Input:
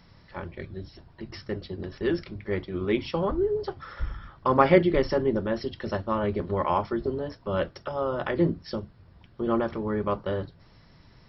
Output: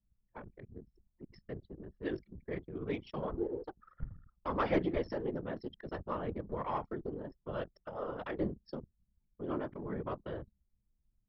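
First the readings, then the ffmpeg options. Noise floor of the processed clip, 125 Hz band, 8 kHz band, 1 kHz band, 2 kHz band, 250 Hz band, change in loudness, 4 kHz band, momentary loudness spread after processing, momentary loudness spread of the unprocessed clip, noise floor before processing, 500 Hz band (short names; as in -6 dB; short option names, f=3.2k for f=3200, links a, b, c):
-79 dBFS, -11.5 dB, n/a, -12.0 dB, -12.0 dB, -11.0 dB, -12.0 dB, -14.0 dB, 16 LU, 15 LU, -56 dBFS, -12.5 dB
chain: -af "aeval=exprs='0.562*(cos(1*acos(clip(val(0)/0.562,-1,1)))-cos(1*PI/2))+0.0631*(cos(4*acos(clip(val(0)/0.562,-1,1)))-cos(4*PI/2))+0.0316*(cos(5*acos(clip(val(0)/0.562,-1,1)))-cos(5*PI/2))':c=same,afftfilt=real='hypot(re,im)*cos(2*PI*random(0))':imag='hypot(re,im)*sin(2*PI*random(1))':win_size=512:overlap=0.75,anlmdn=0.631,volume=-7.5dB"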